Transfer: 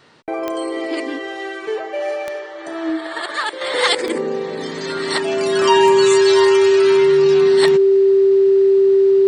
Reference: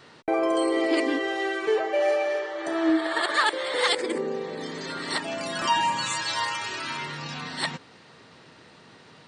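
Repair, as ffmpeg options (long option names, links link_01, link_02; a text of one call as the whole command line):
ffmpeg -i in.wav -af "adeclick=threshold=4,bandreject=frequency=390:width=30,asetnsamples=nb_out_samples=441:pad=0,asendcmd='3.61 volume volume -7dB',volume=0dB" out.wav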